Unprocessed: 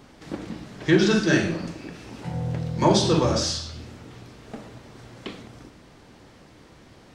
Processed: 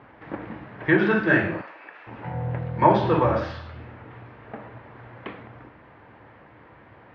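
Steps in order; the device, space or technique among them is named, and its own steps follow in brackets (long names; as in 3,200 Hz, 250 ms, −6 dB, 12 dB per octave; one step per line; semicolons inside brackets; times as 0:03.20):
0:01.61–0:02.07: high-pass filter 770 Hz 12 dB per octave
bass cabinet (loudspeaker in its box 66–2,300 Hz, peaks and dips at 110 Hz +4 dB, 170 Hz −6 dB, 250 Hz −5 dB, 380 Hz −4 dB, 950 Hz +4 dB, 1,700 Hz +3 dB)
low-shelf EQ 220 Hz −4.5 dB
level +3 dB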